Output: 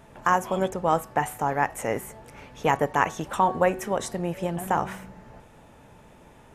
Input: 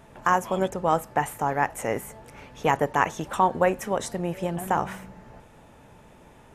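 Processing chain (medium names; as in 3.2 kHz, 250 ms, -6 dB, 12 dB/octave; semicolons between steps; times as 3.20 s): de-hum 372.8 Hz, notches 14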